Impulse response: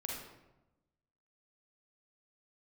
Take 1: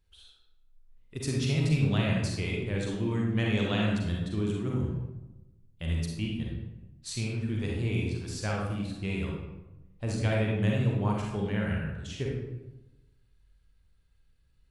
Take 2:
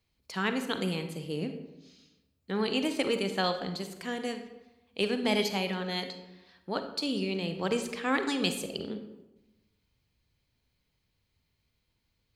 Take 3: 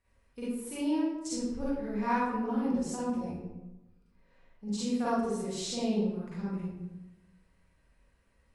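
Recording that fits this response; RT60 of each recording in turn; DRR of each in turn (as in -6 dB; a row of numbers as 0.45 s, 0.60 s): 1; 1.0 s, 1.0 s, 1.0 s; -2.5 dB, 7.5 dB, -10.0 dB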